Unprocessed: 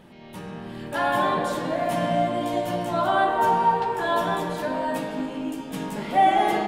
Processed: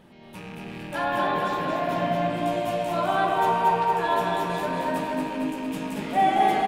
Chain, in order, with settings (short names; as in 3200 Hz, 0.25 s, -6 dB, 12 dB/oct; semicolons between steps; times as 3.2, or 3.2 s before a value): rattling part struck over -40 dBFS, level -30 dBFS; 1.04–2.3 bell 9500 Hz -13 dB 0.87 oct; on a send: feedback echo 0.229 s, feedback 59%, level -4 dB; on the sum: gain -3 dB